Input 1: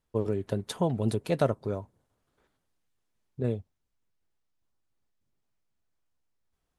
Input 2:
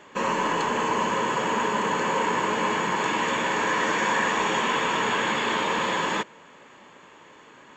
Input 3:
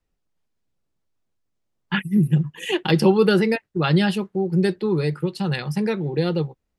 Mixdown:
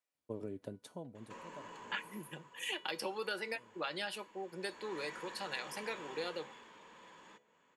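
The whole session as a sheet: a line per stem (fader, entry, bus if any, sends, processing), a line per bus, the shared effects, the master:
−6.0 dB, 0.15 s, bus A, no send, high-pass filter 110 Hz; automatic ducking −24 dB, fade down 1.35 s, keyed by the third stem
0:01.91 −7.5 dB → 0:02.49 −19 dB → 0:04.54 −19 dB → 0:04.97 −6 dB → 0:06.21 −6 dB → 0:06.67 −14 dB, 1.15 s, no bus, no send, hum removal 71.2 Hz, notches 12; downward compressor, threshold −32 dBFS, peak gain reduction 11.5 dB; soft clipping −30 dBFS, distortion −16 dB
−1.0 dB, 0.00 s, bus A, no send, high-pass filter 770 Hz 12 dB per octave
bus A: 0.0 dB, hollow resonant body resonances 280/590/2,300 Hz, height 8 dB; downward compressor, threshold −28 dBFS, peak gain reduction 8 dB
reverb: not used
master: parametric band 9,300 Hz +3.5 dB 0.64 octaves; tuned comb filter 490 Hz, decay 0.34 s, harmonics all, mix 60%

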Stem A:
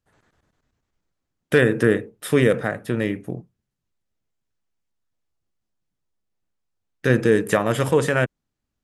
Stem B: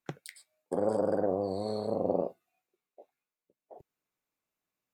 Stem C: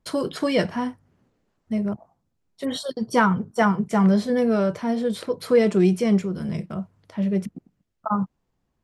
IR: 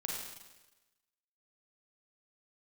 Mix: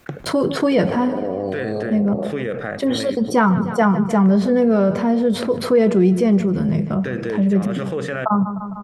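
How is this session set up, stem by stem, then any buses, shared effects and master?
−11.5 dB, 0.00 s, bus A, no send, no echo send, low-pass filter 5,300 Hz 12 dB per octave; spectral tilt +2 dB per octave
+0.5 dB, 0.00 s, bus A, no send, echo send −22.5 dB, no processing
+2.0 dB, 0.20 s, no bus, no send, echo send −18.5 dB, no processing
bus A: 0.0 dB, notch filter 950 Hz, Q 5; brickwall limiter −25.5 dBFS, peak gain reduction 11 dB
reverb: not used
echo: repeating echo 152 ms, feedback 50%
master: high-shelf EQ 2,300 Hz −11 dB; envelope flattener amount 50%

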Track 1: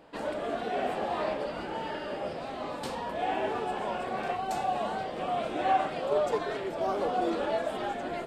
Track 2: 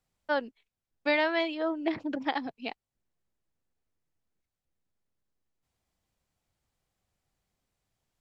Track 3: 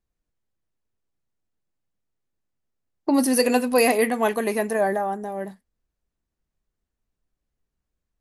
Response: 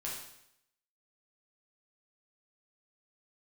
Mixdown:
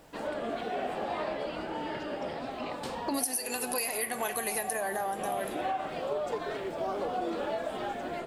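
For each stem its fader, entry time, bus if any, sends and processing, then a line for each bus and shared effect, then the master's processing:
−1.5 dB, 0.00 s, no send, no processing
−18.0 dB, 0.00 s, no send, notch comb filter 260 Hz; envelope flattener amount 100%
−0.5 dB, 0.00 s, send −14 dB, brickwall limiter −14 dBFS, peak gain reduction 8 dB; spectral tilt +4 dB per octave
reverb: on, RT60 0.75 s, pre-delay 8 ms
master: downward compressor 16 to 1, threshold −28 dBFS, peak gain reduction 18 dB

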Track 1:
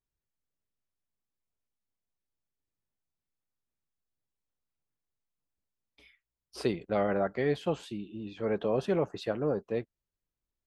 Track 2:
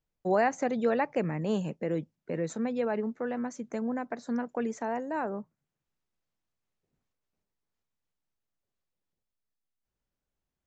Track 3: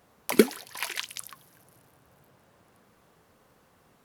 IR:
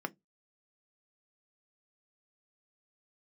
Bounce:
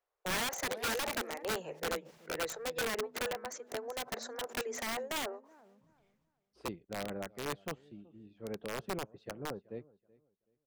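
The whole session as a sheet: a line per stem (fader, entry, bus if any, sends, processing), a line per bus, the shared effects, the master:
−13.0 dB, 0.00 s, no bus, no send, echo send −17.5 dB, low-shelf EQ 490 Hz +7.5 dB
0.0 dB, 0.00 s, bus A, no send, echo send −20.5 dB, level that may fall only so fast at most 38 dB per second; automatic ducking −23 dB, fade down 0.75 s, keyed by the first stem
−15.5 dB, 0.00 s, bus A, no send, echo send −20.5 dB, no processing
bus A: 0.0 dB, Butterworth high-pass 380 Hz 48 dB per octave; downward compressor 4 to 1, threshold −30 dBFS, peak gain reduction 8.5 dB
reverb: not used
echo: repeating echo 378 ms, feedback 25%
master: high-shelf EQ 6,700 Hz −10 dB; wrap-around overflow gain 28.5 dB; expander for the loud parts 1.5 to 1, over −50 dBFS

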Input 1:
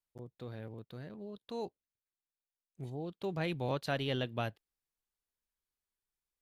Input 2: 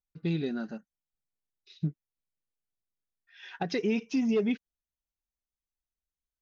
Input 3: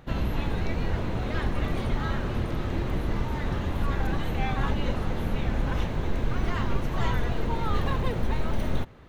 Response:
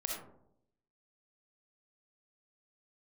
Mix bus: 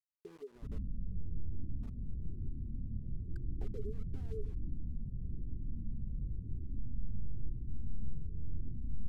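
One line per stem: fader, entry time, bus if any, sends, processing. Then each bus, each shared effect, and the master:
muted
+3.0 dB, 0.00 s, bus A, no send, downward compressor 6 to 1, threshold −32 dBFS, peak gain reduction 9.5 dB; envelope filter 420–3,000 Hz, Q 17, down, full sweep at −45.5 dBFS
−11.0 dB, 0.55 s, no bus, send −6 dB, brickwall limiter −20.5 dBFS, peak gain reduction 7.5 dB; inverse Chebyshev low-pass filter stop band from 930 Hz, stop band 60 dB; flanger whose copies keep moving one way falling 0.99 Hz
bus A: 0.0 dB, centre clipping without the shift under −55.5 dBFS; downward compressor 6 to 1, threshold −44 dBFS, peak gain reduction 12 dB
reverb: on, RT60 0.75 s, pre-delay 20 ms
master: linearly interpolated sample-rate reduction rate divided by 2×

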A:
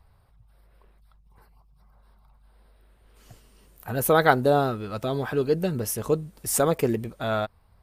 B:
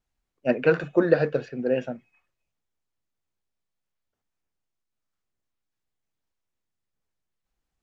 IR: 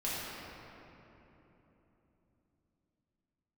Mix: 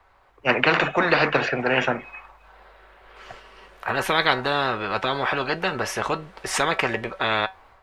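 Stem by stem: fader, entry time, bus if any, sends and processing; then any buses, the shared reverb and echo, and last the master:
−5.5 dB, 0.00 s, no send, Chebyshev low-pass filter 4,900 Hz, order 2; parametric band 230 Hz −10 dB 2.8 octaves; tuned comb filter 190 Hz, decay 0.17 s, harmonics all, mix 60%
−2.0 dB, 0.00 s, no send, no processing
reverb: not used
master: three-way crossover with the lows and the highs turned down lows −18 dB, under 350 Hz, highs −17 dB, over 2,500 Hz; automatic gain control gain up to 7.5 dB; every bin compressed towards the loudest bin 4 to 1

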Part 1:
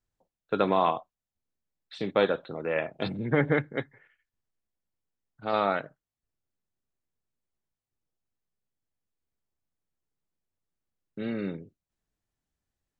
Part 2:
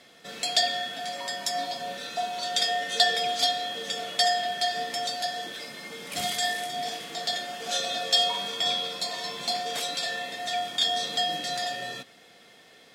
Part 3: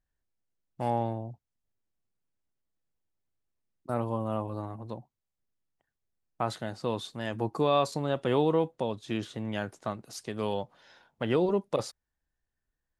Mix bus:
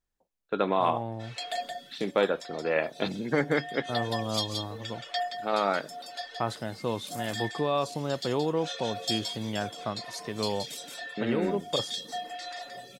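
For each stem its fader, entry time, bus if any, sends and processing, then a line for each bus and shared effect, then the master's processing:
+2.5 dB, 0.00 s, no send, no echo send, parametric band 110 Hz −12.5 dB 0.65 octaves
−7.5 dB, 0.95 s, no send, echo send −5 dB, reverb reduction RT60 1.7 s; phaser with staggered stages 0.81 Hz
−3.5 dB, 0.00 s, no send, no echo send, no processing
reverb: not used
echo: single-tap delay 173 ms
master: speech leveller within 4 dB 0.5 s

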